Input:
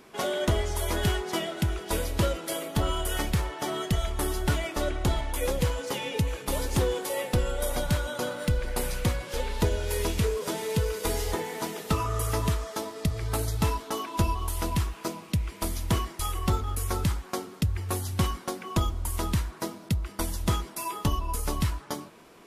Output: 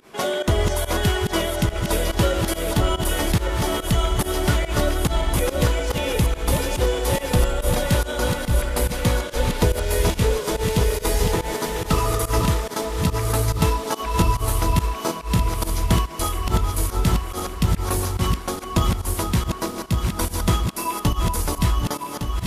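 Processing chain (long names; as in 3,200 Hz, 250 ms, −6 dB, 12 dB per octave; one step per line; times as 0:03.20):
feedback delay that plays each chunk backwards 580 ms, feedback 69%, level −5 dB
0:09.16–0:10.02: surface crackle 100 per second −53 dBFS
fake sidechain pumping 142 BPM, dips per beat 1, −20 dB, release 96 ms
on a send: feedback echo with a high-pass in the loop 79 ms, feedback 54%, level −22 dB
on the sum: level +5.5 dB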